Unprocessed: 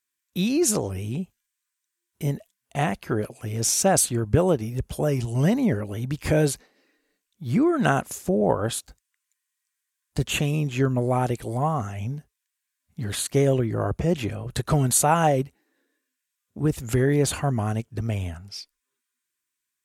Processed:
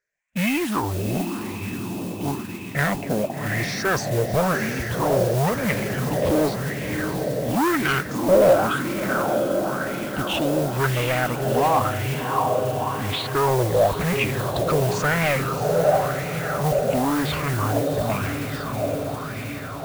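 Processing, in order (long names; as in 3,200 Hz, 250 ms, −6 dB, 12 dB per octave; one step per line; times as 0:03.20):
rippled gain that drifts along the octave scale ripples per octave 0.55, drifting +0.73 Hz, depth 18 dB
low-pass filter 3,300 Hz 12 dB per octave
feedback delay with all-pass diffusion 712 ms, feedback 68%, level −7.5 dB
soft clipping −20.5 dBFS, distortion −8 dB
noise that follows the level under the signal 13 dB
auto-filter bell 0.95 Hz 530–2,300 Hz +14 dB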